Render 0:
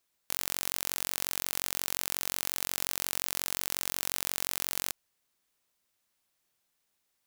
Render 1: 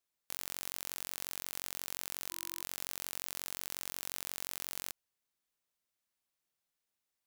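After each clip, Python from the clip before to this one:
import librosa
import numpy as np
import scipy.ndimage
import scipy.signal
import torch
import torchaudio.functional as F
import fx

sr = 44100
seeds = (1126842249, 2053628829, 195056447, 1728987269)

y = fx.spec_erase(x, sr, start_s=2.32, length_s=0.3, low_hz=350.0, high_hz=1000.0)
y = fx.level_steps(y, sr, step_db=11)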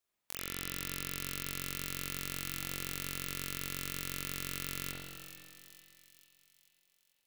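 y = fx.echo_split(x, sr, split_hz=2500.0, low_ms=248, high_ms=442, feedback_pct=52, wet_db=-10.5)
y = fx.rev_spring(y, sr, rt60_s=1.3, pass_ms=(44,), chirp_ms=65, drr_db=-4.5)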